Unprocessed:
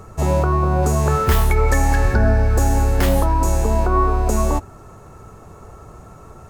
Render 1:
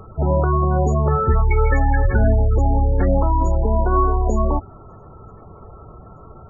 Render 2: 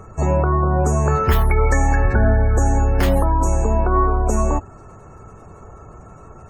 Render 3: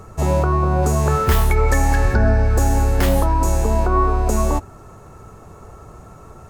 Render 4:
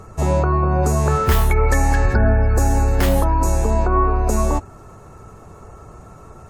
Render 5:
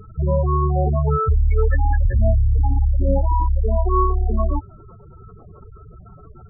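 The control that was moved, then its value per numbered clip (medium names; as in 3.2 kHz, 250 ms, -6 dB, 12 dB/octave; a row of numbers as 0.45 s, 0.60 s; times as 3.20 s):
spectral gate, under each frame's peak: -20 dB, -35 dB, -60 dB, -45 dB, -10 dB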